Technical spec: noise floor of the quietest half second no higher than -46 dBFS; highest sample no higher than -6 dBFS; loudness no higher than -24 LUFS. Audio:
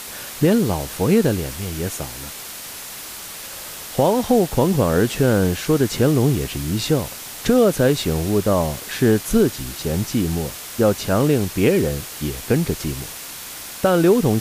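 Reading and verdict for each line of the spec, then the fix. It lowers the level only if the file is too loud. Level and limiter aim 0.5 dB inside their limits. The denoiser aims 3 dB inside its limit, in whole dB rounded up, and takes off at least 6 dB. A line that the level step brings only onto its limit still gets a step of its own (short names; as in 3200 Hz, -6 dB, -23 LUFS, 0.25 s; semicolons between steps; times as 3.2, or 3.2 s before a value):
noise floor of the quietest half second -34 dBFS: fail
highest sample -5.0 dBFS: fail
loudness -19.5 LUFS: fail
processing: denoiser 10 dB, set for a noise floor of -34 dBFS; gain -5 dB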